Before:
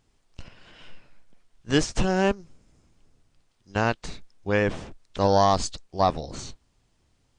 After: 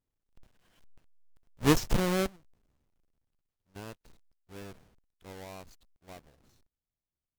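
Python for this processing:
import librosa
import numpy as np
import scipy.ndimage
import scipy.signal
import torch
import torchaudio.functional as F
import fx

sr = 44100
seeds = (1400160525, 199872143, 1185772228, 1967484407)

y = fx.halfwave_hold(x, sr)
y = fx.doppler_pass(y, sr, speed_mps=13, closest_m=2.7, pass_at_s=1.79)
y = F.gain(torch.from_numpy(y), -6.0).numpy()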